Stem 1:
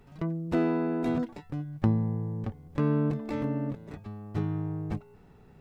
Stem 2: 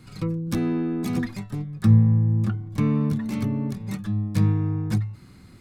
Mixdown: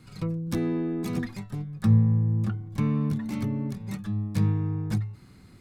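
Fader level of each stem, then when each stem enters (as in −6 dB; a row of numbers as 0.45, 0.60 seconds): −12.5, −3.5 decibels; 0.00, 0.00 seconds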